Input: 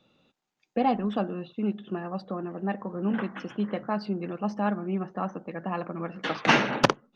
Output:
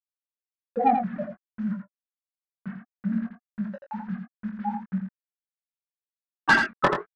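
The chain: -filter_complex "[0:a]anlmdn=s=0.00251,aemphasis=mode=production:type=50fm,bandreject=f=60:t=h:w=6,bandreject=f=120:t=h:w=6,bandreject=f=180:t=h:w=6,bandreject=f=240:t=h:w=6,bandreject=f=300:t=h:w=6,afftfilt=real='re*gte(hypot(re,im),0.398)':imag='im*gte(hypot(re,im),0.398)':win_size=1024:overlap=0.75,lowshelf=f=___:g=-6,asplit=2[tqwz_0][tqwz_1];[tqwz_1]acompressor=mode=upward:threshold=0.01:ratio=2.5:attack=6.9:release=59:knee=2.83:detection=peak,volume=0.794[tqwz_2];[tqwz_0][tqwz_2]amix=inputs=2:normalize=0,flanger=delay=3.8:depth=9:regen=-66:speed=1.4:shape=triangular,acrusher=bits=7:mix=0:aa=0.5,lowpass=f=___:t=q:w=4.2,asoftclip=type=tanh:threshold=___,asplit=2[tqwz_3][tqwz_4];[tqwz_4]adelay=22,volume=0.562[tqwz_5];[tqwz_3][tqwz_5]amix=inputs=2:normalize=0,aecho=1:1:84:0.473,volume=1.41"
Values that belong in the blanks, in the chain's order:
100, 1.6k, 0.168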